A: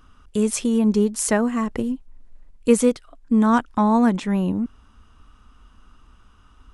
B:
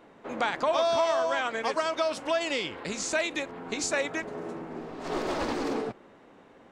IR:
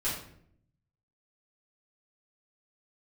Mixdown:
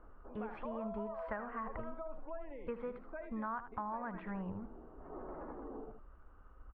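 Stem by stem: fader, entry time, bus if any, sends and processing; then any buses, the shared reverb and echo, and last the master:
+0.5 dB, 0.00 s, no send, echo send −13 dB, guitar amp tone stack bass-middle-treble 10-0-10
−9.0 dB, 0.00 s, no send, echo send −16.5 dB, gate on every frequency bin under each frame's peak −20 dB strong; automatic ducking −8 dB, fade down 0.30 s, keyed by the first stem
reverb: not used
echo: single-tap delay 77 ms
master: inverse Chebyshev low-pass filter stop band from 6,300 Hz, stop band 70 dB; downward compressor 6 to 1, threshold −37 dBFS, peak gain reduction 11.5 dB

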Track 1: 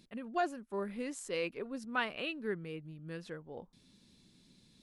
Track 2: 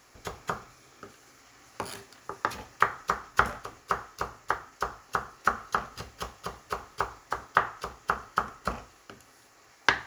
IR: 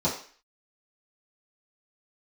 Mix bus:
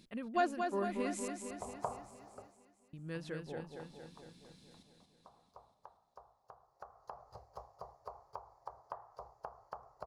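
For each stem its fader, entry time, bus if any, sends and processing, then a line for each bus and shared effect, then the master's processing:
+1.0 dB, 0.00 s, muted 0:01.28–0:02.93, no send, echo send −5.5 dB, no processing
0:02.28 −2 dB → 0:02.60 −11.5 dB → 0:04.15 −11.5 dB → 0:04.44 −22.5 dB → 0:06.55 −22.5 dB → 0:07.22 −13 dB, 1.35 s, no send, no echo send, drawn EQ curve 140 Hz 0 dB, 240 Hz −16 dB, 660 Hz +11 dB, 980 Hz +6 dB, 1,400 Hz −12 dB, 3,100 Hz −25 dB, 4,600 Hz −8 dB, 6,800 Hz −15 dB; downward compressor 5 to 1, threshold −30 dBFS, peak gain reduction 12.5 dB; automatic ducking −16 dB, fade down 0.45 s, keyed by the first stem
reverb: not used
echo: repeating echo 229 ms, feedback 60%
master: no processing

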